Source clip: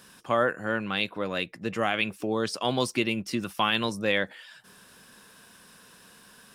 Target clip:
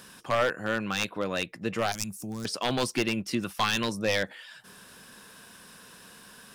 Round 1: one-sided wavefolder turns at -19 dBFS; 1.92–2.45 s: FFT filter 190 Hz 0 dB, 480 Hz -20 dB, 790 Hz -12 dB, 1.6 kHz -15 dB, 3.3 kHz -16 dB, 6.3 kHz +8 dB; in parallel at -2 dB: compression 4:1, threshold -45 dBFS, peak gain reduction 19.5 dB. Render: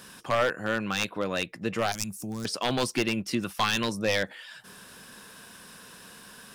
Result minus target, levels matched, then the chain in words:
compression: peak gain reduction -9 dB
one-sided wavefolder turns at -19 dBFS; 1.92–2.45 s: FFT filter 190 Hz 0 dB, 480 Hz -20 dB, 790 Hz -12 dB, 1.6 kHz -15 dB, 3.3 kHz -16 dB, 6.3 kHz +8 dB; in parallel at -2 dB: compression 4:1, threshold -57 dBFS, peak gain reduction 28.5 dB

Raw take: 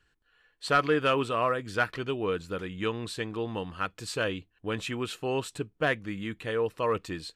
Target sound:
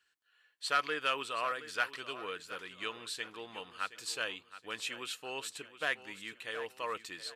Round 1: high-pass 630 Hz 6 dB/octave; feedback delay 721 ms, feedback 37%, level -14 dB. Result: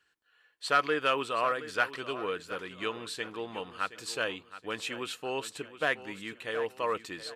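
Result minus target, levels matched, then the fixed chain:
500 Hz band +4.5 dB
high-pass 2.2 kHz 6 dB/octave; feedback delay 721 ms, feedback 37%, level -14 dB

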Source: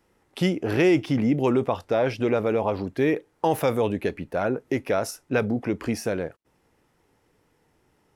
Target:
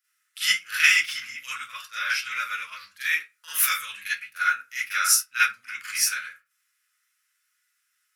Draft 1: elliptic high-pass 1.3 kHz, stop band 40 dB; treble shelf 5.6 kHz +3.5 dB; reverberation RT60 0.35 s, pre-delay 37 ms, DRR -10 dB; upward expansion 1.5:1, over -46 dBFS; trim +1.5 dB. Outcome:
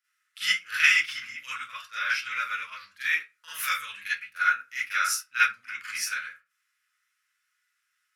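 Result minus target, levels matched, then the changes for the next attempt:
8 kHz band -6.5 dB
change: treble shelf 5.6 kHz +15 dB

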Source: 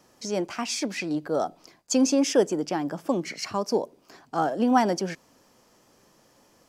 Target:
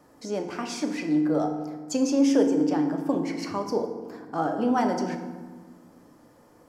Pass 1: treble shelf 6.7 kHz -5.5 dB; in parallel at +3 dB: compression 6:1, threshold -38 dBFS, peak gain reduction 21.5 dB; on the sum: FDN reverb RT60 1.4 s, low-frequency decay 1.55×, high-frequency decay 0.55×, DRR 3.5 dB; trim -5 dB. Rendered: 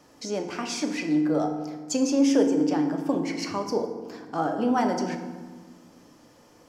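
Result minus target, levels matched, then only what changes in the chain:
4 kHz band +3.0 dB
add after compression: Butterworth band-stop 4.1 kHz, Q 0.76

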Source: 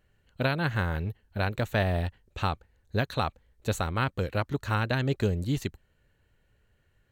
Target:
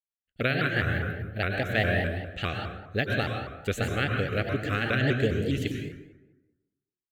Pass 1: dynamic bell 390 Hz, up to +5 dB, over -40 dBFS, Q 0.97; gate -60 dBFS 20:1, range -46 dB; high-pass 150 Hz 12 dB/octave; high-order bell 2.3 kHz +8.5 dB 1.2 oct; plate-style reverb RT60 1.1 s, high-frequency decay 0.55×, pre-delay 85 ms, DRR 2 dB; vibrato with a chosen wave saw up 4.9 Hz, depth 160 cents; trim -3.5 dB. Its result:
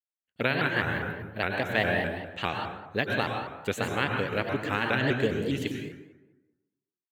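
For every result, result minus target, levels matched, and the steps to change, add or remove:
125 Hz band -5.0 dB; 1 kHz band +4.0 dB
remove: high-pass 150 Hz 12 dB/octave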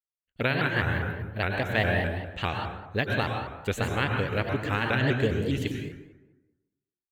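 1 kHz band +3.0 dB
add after dynamic bell: Butterworth band-stop 950 Hz, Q 2.2

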